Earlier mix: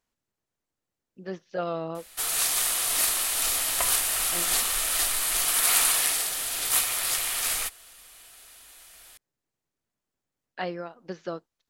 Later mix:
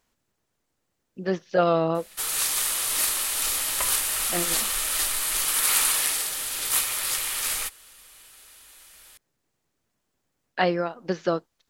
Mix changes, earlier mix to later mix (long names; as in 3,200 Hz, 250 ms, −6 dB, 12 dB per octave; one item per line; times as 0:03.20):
speech +9.5 dB
background: add Butterworth band-reject 700 Hz, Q 7.1